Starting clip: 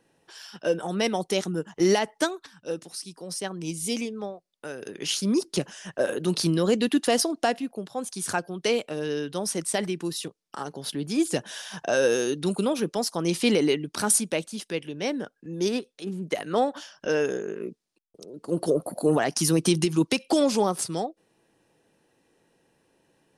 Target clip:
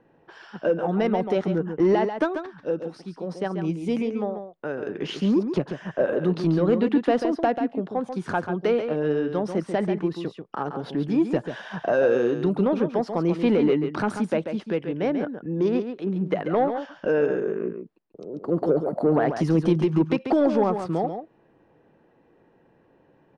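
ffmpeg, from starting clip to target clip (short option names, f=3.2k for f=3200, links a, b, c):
-filter_complex "[0:a]lowpass=1.5k,asplit=2[a][b];[b]acompressor=threshold=-30dB:ratio=6,volume=2.5dB[c];[a][c]amix=inputs=2:normalize=0,asoftclip=type=tanh:threshold=-10.5dB,aecho=1:1:139:0.398"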